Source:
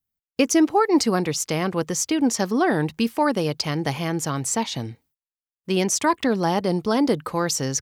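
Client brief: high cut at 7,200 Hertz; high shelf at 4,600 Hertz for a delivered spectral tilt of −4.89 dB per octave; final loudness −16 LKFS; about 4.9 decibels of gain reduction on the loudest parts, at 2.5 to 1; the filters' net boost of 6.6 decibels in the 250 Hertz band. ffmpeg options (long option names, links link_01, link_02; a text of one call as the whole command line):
ffmpeg -i in.wav -af "lowpass=7200,equalizer=frequency=250:width_type=o:gain=8.5,highshelf=frequency=4600:gain=3.5,acompressor=threshold=-15dB:ratio=2.5,volume=4.5dB" out.wav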